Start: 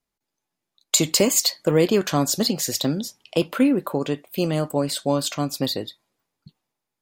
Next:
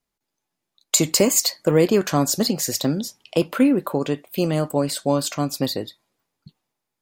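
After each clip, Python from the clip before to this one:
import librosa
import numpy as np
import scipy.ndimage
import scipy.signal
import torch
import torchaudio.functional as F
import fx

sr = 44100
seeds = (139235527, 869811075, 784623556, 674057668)

y = fx.dynamic_eq(x, sr, hz=3400.0, q=2.1, threshold_db=-39.0, ratio=4.0, max_db=-6)
y = F.gain(torch.from_numpy(y), 1.5).numpy()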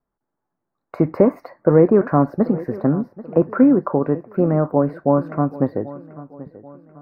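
y = scipy.signal.sosfilt(scipy.signal.cheby2(4, 40, 3000.0, 'lowpass', fs=sr, output='sos'), x)
y = fx.echo_feedback(y, sr, ms=786, feedback_pct=43, wet_db=-18)
y = F.gain(torch.from_numpy(y), 4.0).numpy()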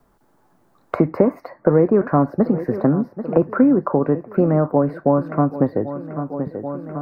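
y = fx.band_squash(x, sr, depth_pct=70)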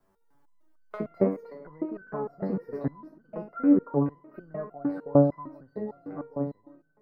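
y = fx.fade_out_tail(x, sr, length_s=0.59)
y = fx.rev_spring(y, sr, rt60_s=2.6, pass_ms=(56,), chirp_ms=55, drr_db=14.0)
y = fx.resonator_held(y, sr, hz=6.6, low_hz=96.0, high_hz=1500.0)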